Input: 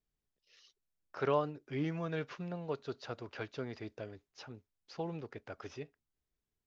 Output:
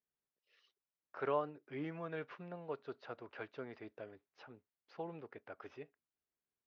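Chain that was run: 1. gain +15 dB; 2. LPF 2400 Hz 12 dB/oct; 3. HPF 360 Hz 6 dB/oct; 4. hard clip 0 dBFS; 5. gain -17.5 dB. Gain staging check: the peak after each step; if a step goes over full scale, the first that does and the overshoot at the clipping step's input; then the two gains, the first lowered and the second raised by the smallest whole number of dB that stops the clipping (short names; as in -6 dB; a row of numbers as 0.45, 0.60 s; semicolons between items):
-4.0, -4.5, -5.5, -5.5, -23.0 dBFS; no overload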